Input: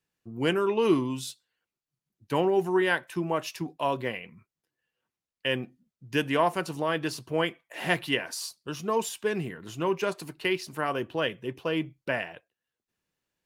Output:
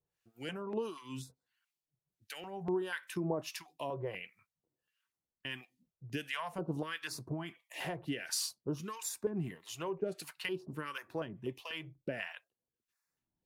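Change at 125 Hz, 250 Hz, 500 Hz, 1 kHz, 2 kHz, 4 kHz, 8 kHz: -7.0 dB, -10.5 dB, -12.0 dB, -14.0 dB, -11.5 dB, -9.0 dB, -2.5 dB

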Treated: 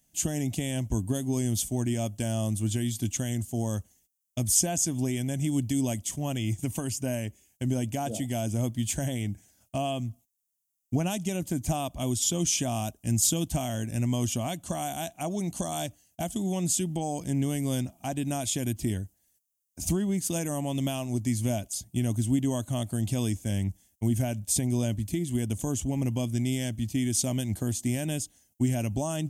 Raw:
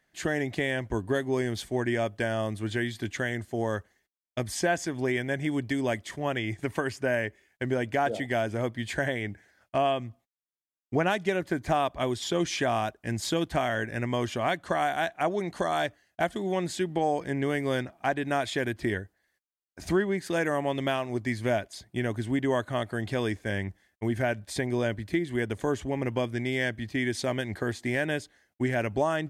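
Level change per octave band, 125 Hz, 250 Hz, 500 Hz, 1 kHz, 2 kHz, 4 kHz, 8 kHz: +5.5 dB, +2.0 dB, -6.5 dB, -7.0 dB, -13.0 dB, 0.0 dB, +13.5 dB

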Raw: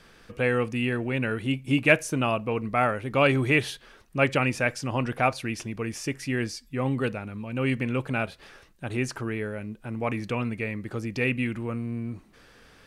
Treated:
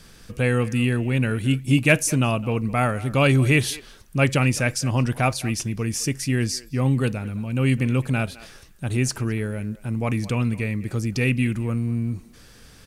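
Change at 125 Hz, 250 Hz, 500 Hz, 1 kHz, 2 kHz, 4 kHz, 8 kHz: +9.0 dB, +5.0 dB, +1.0 dB, 0.0 dB, +1.5 dB, +5.0 dB, +11.5 dB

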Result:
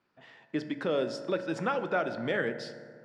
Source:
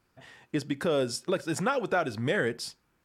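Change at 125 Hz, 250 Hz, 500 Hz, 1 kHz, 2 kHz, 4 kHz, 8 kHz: -6.0 dB, -2.5 dB, -1.5 dB, -2.0 dB, -2.0 dB, -5.0 dB, -14.5 dB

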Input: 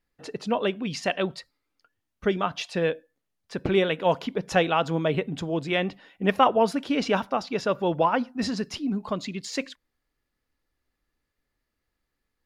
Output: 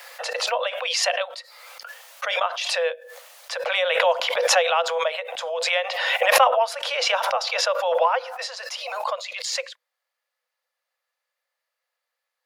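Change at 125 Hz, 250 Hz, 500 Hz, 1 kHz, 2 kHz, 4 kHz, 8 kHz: under -35 dB, under -35 dB, +2.0 dB, +3.5 dB, +7.5 dB, +9.5 dB, +13.0 dB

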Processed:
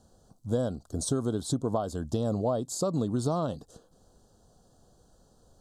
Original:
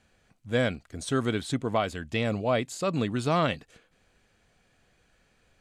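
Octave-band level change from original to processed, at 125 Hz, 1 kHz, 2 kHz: 0.0 dB, -5.5 dB, -20.0 dB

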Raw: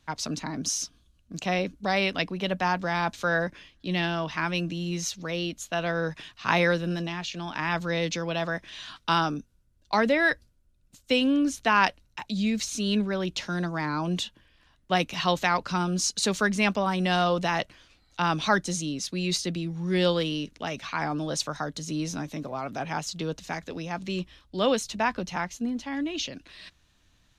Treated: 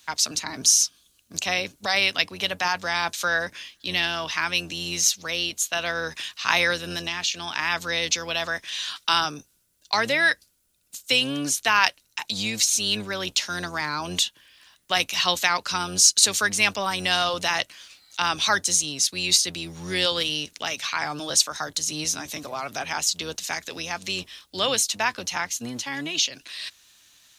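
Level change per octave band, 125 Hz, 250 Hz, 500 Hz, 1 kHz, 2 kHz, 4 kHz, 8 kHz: -7.5 dB, -7.5 dB, -3.0 dB, +0.5 dB, +4.5 dB, +9.5 dB, +12.5 dB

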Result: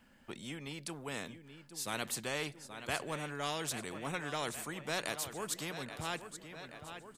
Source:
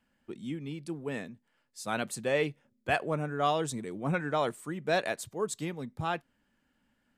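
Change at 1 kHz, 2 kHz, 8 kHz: -8.0 dB, -4.5 dB, +2.0 dB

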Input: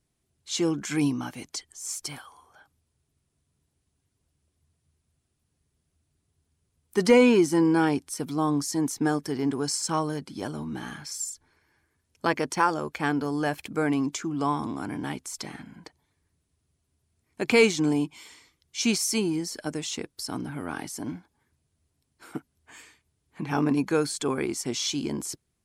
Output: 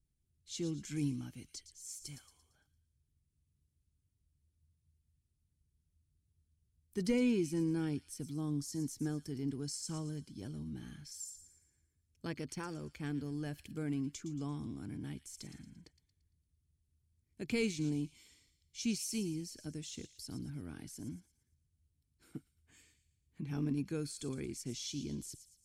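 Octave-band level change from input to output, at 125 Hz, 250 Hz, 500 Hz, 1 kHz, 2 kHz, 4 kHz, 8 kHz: -6.0 dB, -11.5 dB, -16.5 dB, -25.0 dB, -18.0 dB, -14.0 dB, -12.5 dB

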